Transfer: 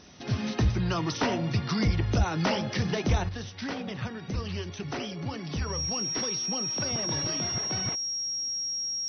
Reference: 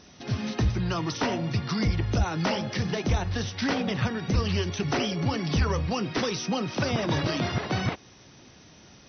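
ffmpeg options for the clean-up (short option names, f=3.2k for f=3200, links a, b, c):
-af "bandreject=f=5.6k:w=30,asetnsamples=n=441:p=0,asendcmd='3.29 volume volume 7.5dB',volume=0dB"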